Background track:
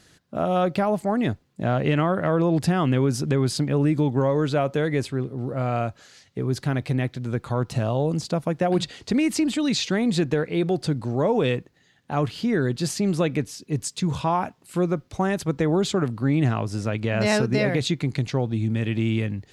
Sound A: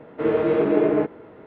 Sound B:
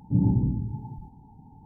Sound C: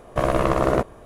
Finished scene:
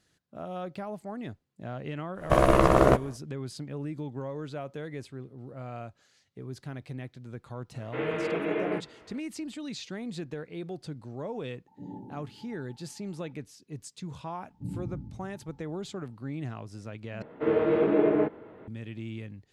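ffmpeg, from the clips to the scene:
ffmpeg -i bed.wav -i cue0.wav -i cue1.wav -i cue2.wav -filter_complex "[1:a]asplit=2[link_01][link_02];[2:a]asplit=2[link_03][link_04];[0:a]volume=-15dB[link_05];[link_01]equalizer=frequency=2600:width_type=o:width=2:gain=14.5[link_06];[link_03]highpass=440[link_07];[link_05]asplit=2[link_08][link_09];[link_08]atrim=end=17.224[link_10];[link_02]atrim=end=1.46,asetpts=PTS-STARTPTS,volume=-4dB[link_11];[link_09]atrim=start=18.676[link_12];[3:a]atrim=end=1.05,asetpts=PTS-STARTPTS,afade=type=in:duration=0.1,afade=type=out:start_time=0.95:duration=0.1,adelay=2140[link_13];[link_06]atrim=end=1.46,asetpts=PTS-STARTPTS,volume=-12.5dB,afade=type=in:duration=0.004:curve=hsin,afade=type=out:start_time=1.456:duration=0.004:curve=hsin,adelay=7740[link_14];[link_07]atrim=end=1.65,asetpts=PTS-STARTPTS,volume=-6dB,afade=type=in:duration=0.004:curve=hsin,afade=type=out:start_time=1.646:duration=0.004:curve=hsin,adelay=11670[link_15];[link_04]atrim=end=1.65,asetpts=PTS-STARTPTS,volume=-14.5dB,afade=type=in:duration=0.004:curve=hsin,afade=type=out:start_time=1.646:duration=0.004:curve=hsin,adelay=14500[link_16];[link_10][link_11]acrossfade=duration=0.004:curve1=hsin:curve2=hsin[link_17];[link_17][link_12]acrossfade=duration=0.004:curve1=hsin:curve2=hsin[link_18];[link_18][link_13][link_14][link_15][link_16]amix=inputs=5:normalize=0" out.wav

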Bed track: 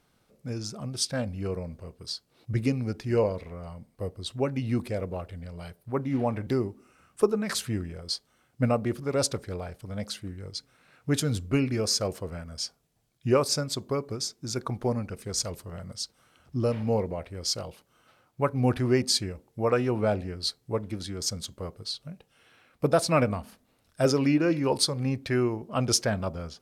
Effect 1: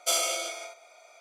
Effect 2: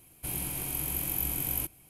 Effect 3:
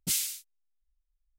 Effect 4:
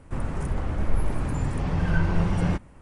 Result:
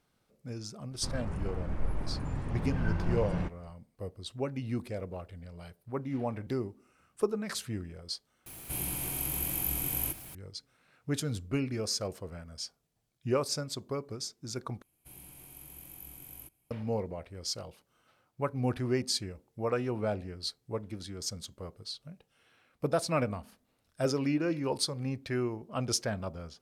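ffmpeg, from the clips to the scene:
ffmpeg -i bed.wav -i cue0.wav -i cue1.wav -i cue2.wav -i cue3.wav -filter_complex "[2:a]asplit=2[link_01][link_02];[0:a]volume=-6.5dB[link_03];[4:a]highshelf=frequency=4600:gain=-8[link_04];[link_01]aeval=exprs='val(0)+0.5*0.00891*sgn(val(0))':channel_layout=same[link_05];[link_03]asplit=3[link_06][link_07][link_08];[link_06]atrim=end=8.464[link_09];[link_05]atrim=end=1.89,asetpts=PTS-STARTPTS,volume=-2dB[link_10];[link_07]atrim=start=10.346:end=14.824[link_11];[link_02]atrim=end=1.89,asetpts=PTS-STARTPTS,volume=-17dB[link_12];[link_08]atrim=start=16.706[link_13];[link_04]atrim=end=2.81,asetpts=PTS-STARTPTS,volume=-8.5dB,afade=type=in:duration=0.004:curve=hsin,afade=type=out:start_time=2.806:duration=0.004:curve=hsin,adelay=910[link_14];[link_09][link_10]acrossfade=duration=0.004:curve1=hsin:curve2=hsin[link_15];[link_15][link_11]acrossfade=duration=0.004:curve1=hsin:curve2=hsin[link_16];[link_16][link_12]acrossfade=duration=0.004:curve1=hsin:curve2=hsin[link_17];[link_17][link_13]acrossfade=duration=0.004:curve1=hsin:curve2=hsin[link_18];[link_18][link_14]amix=inputs=2:normalize=0" out.wav

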